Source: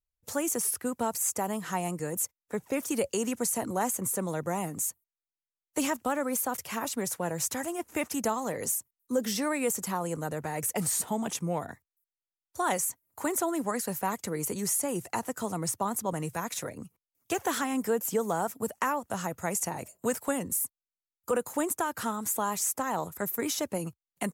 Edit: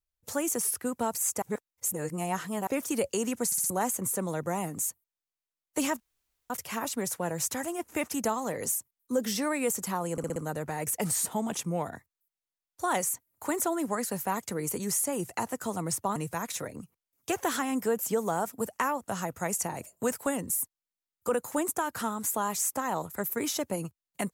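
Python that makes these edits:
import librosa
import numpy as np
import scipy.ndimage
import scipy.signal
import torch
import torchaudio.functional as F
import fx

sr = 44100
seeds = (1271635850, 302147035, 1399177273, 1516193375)

y = fx.edit(x, sr, fx.reverse_span(start_s=1.42, length_s=1.25),
    fx.stutter_over(start_s=3.46, slice_s=0.06, count=4),
    fx.room_tone_fill(start_s=6.0, length_s=0.5),
    fx.stutter(start_s=10.12, slice_s=0.06, count=5),
    fx.cut(start_s=15.92, length_s=0.26), tone=tone)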